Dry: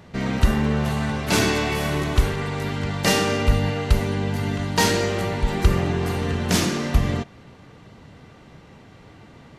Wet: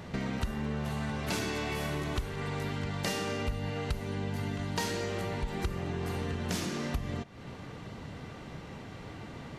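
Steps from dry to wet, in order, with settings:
downward compressor 4 to 1, threshold −36 dBFS, peak gain reduction 21.5 dB
level +2.5 dB

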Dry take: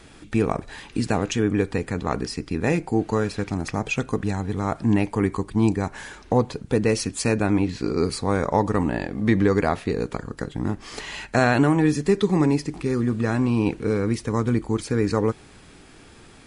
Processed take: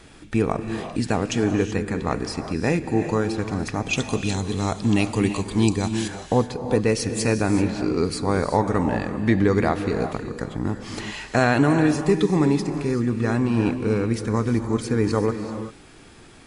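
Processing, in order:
0:03.93–0:06.08: high shelf with overshoot 2,400 Hz +9.5 dB, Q 1.5
reverb whose tail is shaped and stops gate 410 ms rising, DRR 8 dB

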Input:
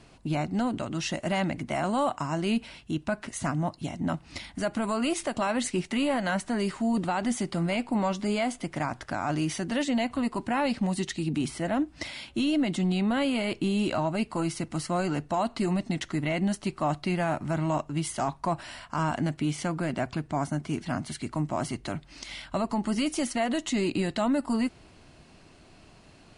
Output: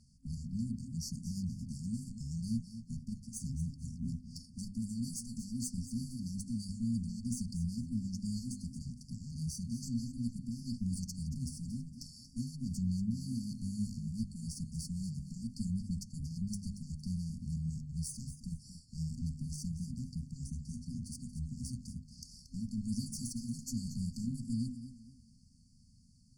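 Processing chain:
sub-octave generator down 1 octave, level −6 dB
tube saturation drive 26 dB, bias 0.8
mains-hum notches 50/100/150/200/250 Hz
brick-wall band-stop 260–4,400 Hz
feedback echo with a swinging delay time 231 ms, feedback 32%, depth 69 cents, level −12 dB
level −2 dB

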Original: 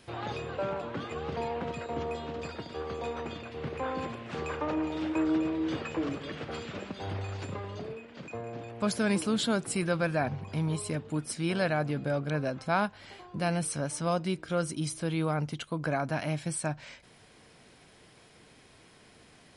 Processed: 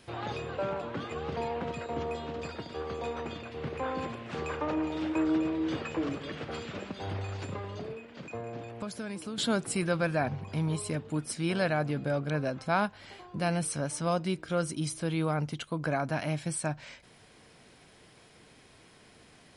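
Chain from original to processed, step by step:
0:08.63–0:09.38: downward compressor 5 to 1, threshold −36 dBFS, peak gain reduction 11.5 dB

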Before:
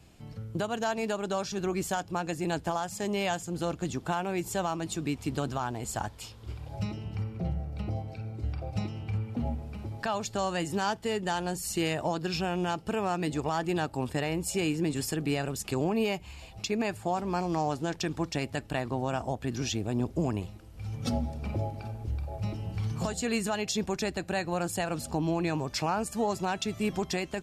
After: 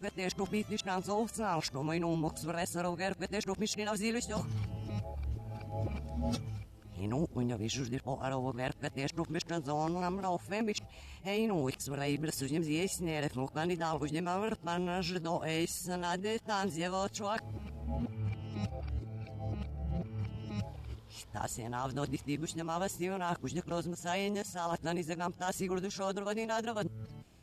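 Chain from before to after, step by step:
played backwards from end to start
level −4.5 dB

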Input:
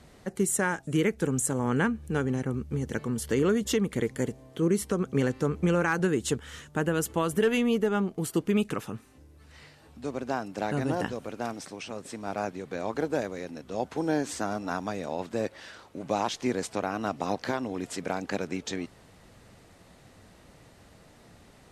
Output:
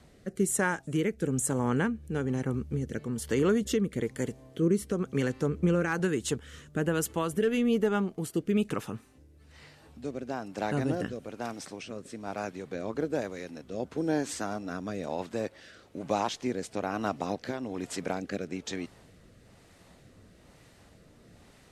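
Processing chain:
rotating-speaker cabinet horn 1.1 Hz

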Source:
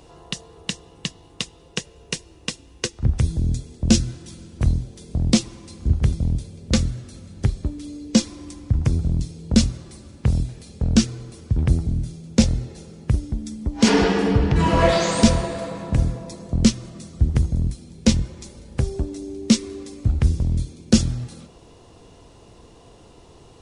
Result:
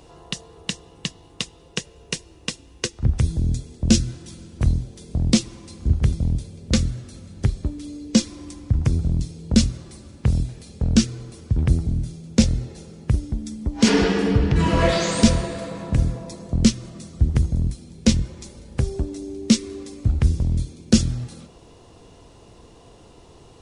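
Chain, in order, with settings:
dynamic equaliser 830 Hz, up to −5 dB, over −36 dBFS, Q 1.4

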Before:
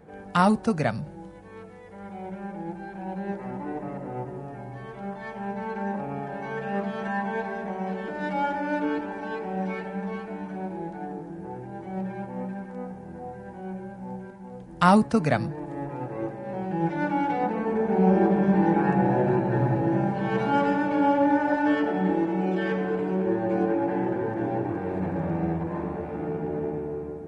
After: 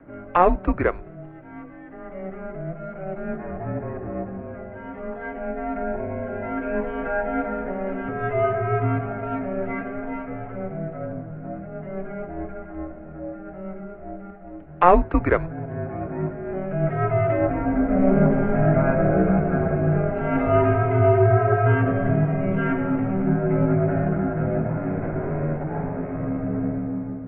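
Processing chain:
0:05.26–0:07.38: notch filter 1,400 Hz, Q 7.7
single-sideband voice off tune −180 Hz 250–2,600 Hz
level +5.5 dB

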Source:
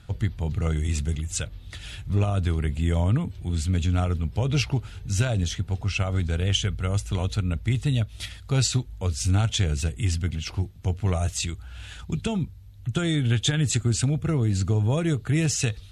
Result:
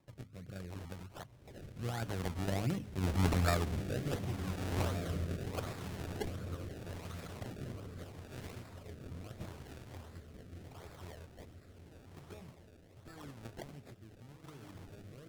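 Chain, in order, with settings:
source passing by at 0:03.25, 39 m/s, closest 14 metres
low-pass filter 3,700 Hz 24 dB per octave
spectral tilt +2.5 dB per octave
mains-hum notches 50/100/150/200/250 Hz
in parallel at −0.5 dB: downward compressor, threshold −52 dBFS, peak gain reduction 23 dB
on the sum: feedback delay with all-pass diffusion 1,537 ms, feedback 43%, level −5 dB
sample-and-hold swept by an LFO 30×, swing 100% 1.3 Hz
wrong playback speed 24 fps film run at 25 fps
rotating-speaker cabinet horn 0.8 Hz
level +2 dB

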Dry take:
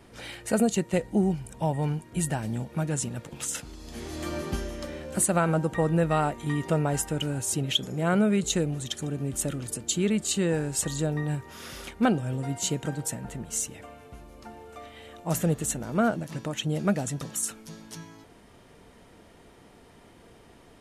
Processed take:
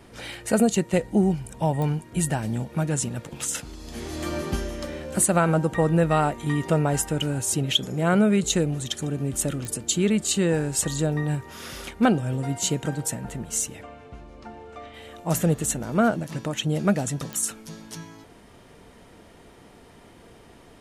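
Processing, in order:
0:13.82–0:14.94: high-frequency loss of the air 94 metres
digital clicks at 0:01.82/0:09.65/0:17.33, −21 dBFS
level +3.5 dB

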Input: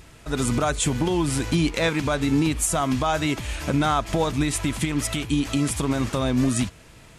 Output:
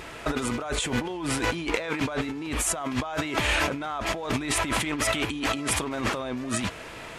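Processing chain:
bass and treble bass −14 dB, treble −10 dB
brickwall limiter −18 dBFS, peak gain reduction 6.5 dB
compressor whose output falls as the input rises −36 dBFS, ratio −1
level +7 dB

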